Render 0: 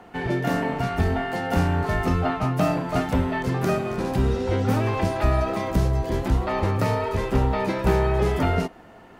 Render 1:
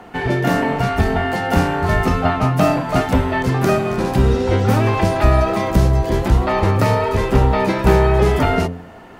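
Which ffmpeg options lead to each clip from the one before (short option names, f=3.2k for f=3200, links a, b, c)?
-af "bandreject=f=87.24:t=h:w=4,bandreject=f=174.48:t=h:w=4,bandreject=f=261.72:t=h:w=4,bandreject=f=348.96:t=h:w=4,bandreject=f=436.2:t=h:w=4,bandreject=f=523.44:t=h:w=4,bandreject=f=610.68:t=h:w=4,bandreject=f=697.92:t=h:w=4,volume=7.5dB"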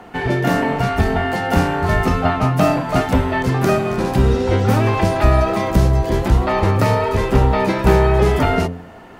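-af anull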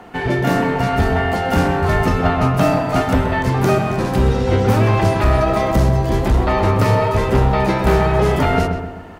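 -filter_complex "[0:a]asoftclip=type=hard:threshold=-8.5dB,asplit=2[a][b];[b]adelay=129,lowpass=f=2.3k:p=1,volume=-6.5dB,asplit=2[c][d];[d]adelay=129,lowpass=f=2.3k:p=1,volume=0.48,asplit=2[e][f];[f]adelay=129,lowpass=f=2.3k:p=1,volume=0.48,asplit=2[g][h];[h]adelay=129,lowpass=f=2.3k:p=1,volume=0.48,asplit=2[i][j];[j]adelay=129,lowpass=f=2.3k:p=1,volume=0.48,asplit=2[k][l];[l]adelay=129,lowpass=f=2.3k:p=1,volume=0.48[m];[a][c][e][g][i][k][m]amix=inputs=7:normalize=0"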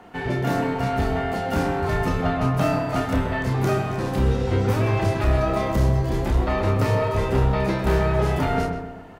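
-filter_complex "[0:a]asplit=2[a][b];[b]adelay=30,volume=-6dB[c];[a][c]amix=inputs=2:normalize=0,volume=-7.5dB"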